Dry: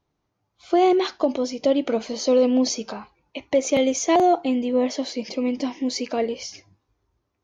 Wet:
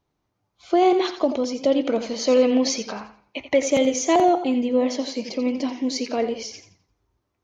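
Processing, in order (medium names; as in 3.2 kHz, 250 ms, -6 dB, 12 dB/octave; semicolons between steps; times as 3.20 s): 1.99–3.65 s: dynamic bell 2 kHz, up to +8 dB, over -43 dBFS, Q 1.1; modulated delay 86 ms, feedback 30%, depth 73 cents, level -11 dB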